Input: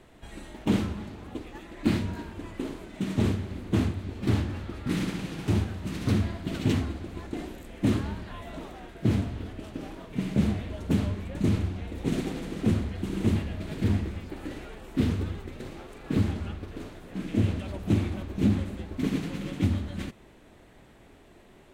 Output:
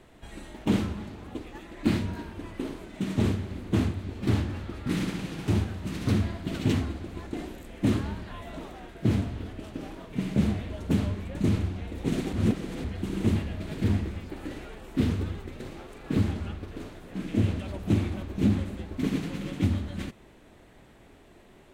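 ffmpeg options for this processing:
-filter_complex "[0:a]asettb=1/sr,asplit=3[a][b][c];[a]atrim=end=2.064[d];[b]atrim=start=2.06:end=2.77,asetpts=PTS-STARTPTS,afade=t=in:d=0.004:c=qsin,afade=t=out:st=0.706:d=0.004:c=qsin,bandreject=f=7.2k:w=12[e];[c]atrim=start=2.766[f];[d][e]acrossfade=d=0.004:c1=hsin:c2=qsin[g];[g][f]acrossfade=d=0.004:c1=qsin:c2=hsin,asplit=3[h][i][j];[h]atrim=end=12.332[k];[i]atrim=start=12.328:end=12.842,asetpts=PTS-STARTPTS,areverse[l];[j]atrim=start=12.838[m];[k][l]acrossfade=d=0.004:c1=hsin:c2=hsin[n];[n][m]acrossfade=d=0.004:c1=hsin:c2=hsin"

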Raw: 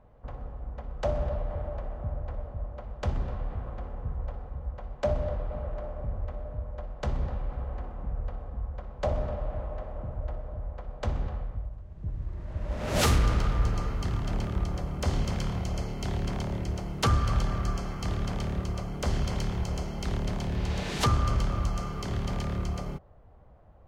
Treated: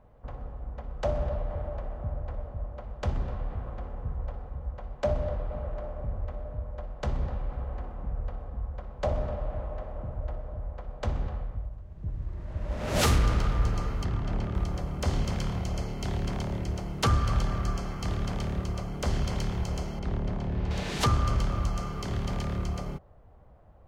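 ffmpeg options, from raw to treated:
-filter_complex "[0:a]asettb=1/sr,asplit=3[a][b][c];[a]atrim=end=14.044[d];[b]atrim=start=14.04:end=14.55,asetpts=PTS-STARTPTS,afade=t=in:d=0.004:c=qsin,afade=t=out:st=0.506:d=0.004:c=qsin,lowpass=f=2.8k:p=1[e];[c]atrim=start=14.546[f];[d][e]acrossfade=d=0.004:c1=hsin:c2=qsin[g];[g][f]acrossfade=d=0.004:c1=qsin:c2=hsin,asettb=1/sr,asplit=3[h][i][j];[h]atrim=end=19.994[k];[i]atrim=start=19.99:end=20.71,asetpts=PTS-STARTPTS,afade=t=in:d=0.004:c=qsin,afade=t=out:st=0.716:d=0.004:c=qsin,lowpass=f=1.3k:p=1[l];[j]atrim=start=20.706[m];[k][l]acrossfade=d=0.004:c1=hsin:c2=qsin[n];[n][m]acrossfade=d=0.004:c1=qsin:c2=hsin"

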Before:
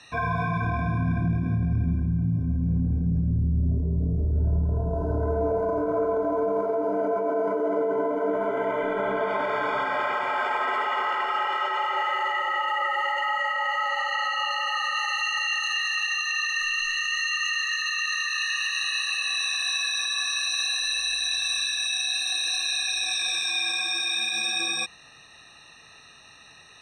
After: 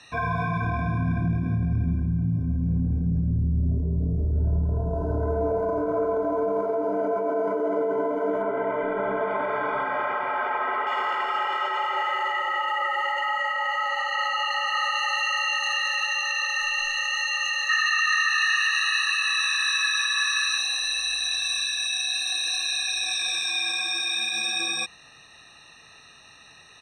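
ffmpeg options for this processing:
-filter_complex "[0:a]asettb=1/sr,asplit=3[a][b][c];[a]atrim=end=8.424[d];[b]atrim=start=8.42:end=10.87,asetpts=PTS-STARTPTS,afade=t=in:d=0.004:c=qsin,afade=t=out:st=2.446:d=0.004:c=qsin,lowpass=2.2k[e];[c]atrim=start=10.866[f];[d][e]acrossfade=d=0.004:c1=hsin:c2=qsin[g];[g][f]acrossfade=d=0.004:c1=qsin:c2=hsin,asplit=2[h][i];[i]afade=t=in:st=13.61:d=0.01,afade=t=out:st=14.67:d=0.01,aecho=0:1:560|1120|1680|2240|2800|3360|3920|4480|5040|5600|6160|6720:0.530884|0.424708|0.339766|0.271813|0.21745|0.17396|0.139168|0.111335|0.0890676|0.0712541|0.0570033|0.0456026[j];[h][j]amix=inputs=2:normalize=0,asettb=1/sr,asplit=3[k][l][m];[k]atrim=end=17.694[n];[l]atrim=start=17.69:end=20.58,asetpts=PTS-STARTPTS,afade=t=in:d=0.004:c=qsin,afade=t=out:st=2.886:d=0.004:c=qsin,highpass=f=1.4k:t=q:w=4.5[o];[m]atrim=start=20.576[p];[n][o]acrossfade=d=0.004:c1=hsin:c2=qsin[q];[q][p]acrossfade=d=0.004:c1=qsin:c2=hsin"

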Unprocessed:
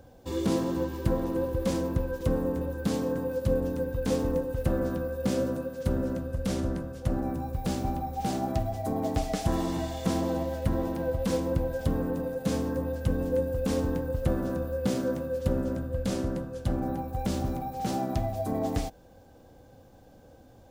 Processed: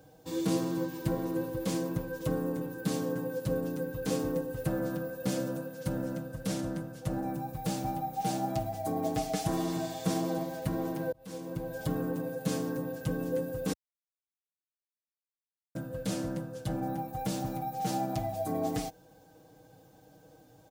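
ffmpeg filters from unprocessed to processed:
-filter_complex "[0:a]asplit=4[a][b][c][d];[a]atrim=end=11.12,asetpts=PTS-STARTPTS,afade=t=out:st=11.116:d=0.004:c=hsin[e];[b]atrim=start=11.12:end=13.73,asetpts=PTS-STARTPTS,afade=t=in:d=0.73,afade=t=out:st=2.606:d=0.004:c=hsin[f];[c]atrim=start=13.73:end=15.75,asetpts=PTS-STARTPTS,volume=0[g];[d]atrim=start=15.75,asetpts=PTS-STARTPTS,afade=t=in:d=0.004:c=hsin[h];[e][f][g][h]concat=n=4:v=0:a=1,highpass=71,highshelf=f=5.8k:g=6.5,aecho=1:1:6.4:0.91,volume=-5.5dB"

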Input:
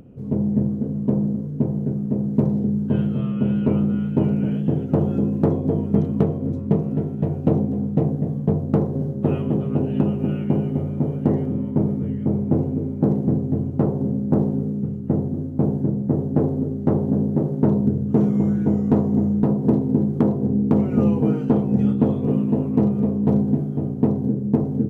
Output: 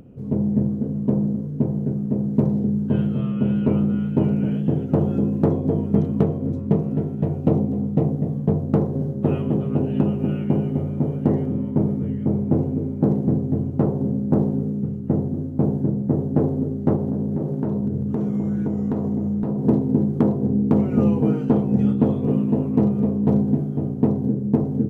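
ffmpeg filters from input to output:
-filter_complex "[0:a]asettb=1/sr,asplit=3[a][b][c];[a]atrim=end=7.324[d];[b]atrim=start=7.32:end=8.32,asetpts=PTS-STARTPTS,afade=t=in:d=0.004:c=qsin,afade=t=out:st=0.996:d=0.004:c=qsin,bandreject=f=1.6k:w=11[e];[c]atrim=start=8.316[f];[d][e]acrossfade=d=0.004:c1=hsin:c2=qsin[g];[g][f]acrossfade=d=0.004:c1=qsin:c2=hsin,asettb=1/sr,asplit=3[h][i][j];[h]atrim=end=16.954[k];[i]atrim=start=16.95:end=19.59,asetpts=PTS-STARTPTS,afade=t=in:d=0.004:c=qsin,afade=t=out:st=2.636:d=0.004:c=qsin,acompressor=threshold=-19dB:ratio=6:attack=3.2:release=140:knee=1:detection=peak[l];[j]atrim=start=19.586[m];[k][l]acrossfade=d=0.004:c1=hsin:c2=qsin[n];[n][m]acrossfade=d=0.004:c1=qsin:c2=hsin"

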